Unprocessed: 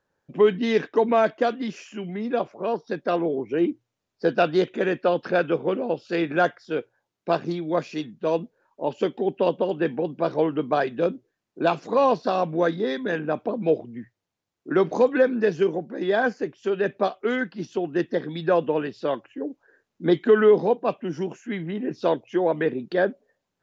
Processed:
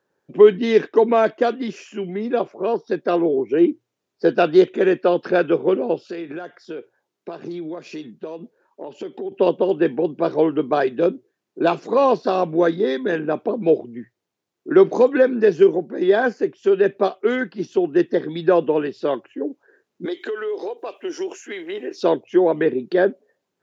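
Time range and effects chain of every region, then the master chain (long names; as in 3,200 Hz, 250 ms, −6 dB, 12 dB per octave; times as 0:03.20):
0:06.04–0:09.32: high-pass filter 120 Hz + downward compressor 10 to 1, threshold −32 dBFS
0:20.05–0:22.03: high-pass filter 350 Hz 24 dB per octave + high-shelf EQ 2,600 Hz +11.5 dB + downward compressor 12 to 1, threshold −29 dBFS
whole clip: high-pass filter 130 Hz; parametric band 380 Hz +7 dB 0.52 octaves; level +2 dB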